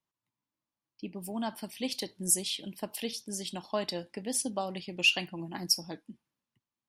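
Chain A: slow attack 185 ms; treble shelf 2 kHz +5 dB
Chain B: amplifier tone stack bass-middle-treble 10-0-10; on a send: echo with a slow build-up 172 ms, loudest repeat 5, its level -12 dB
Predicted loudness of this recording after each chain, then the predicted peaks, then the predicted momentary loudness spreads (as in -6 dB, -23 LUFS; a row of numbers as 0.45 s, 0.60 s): -34.5 LUFS, -32.5 LUFS; -15.0 dBFS, -11.0 dBFS; 12 LU, 17 LU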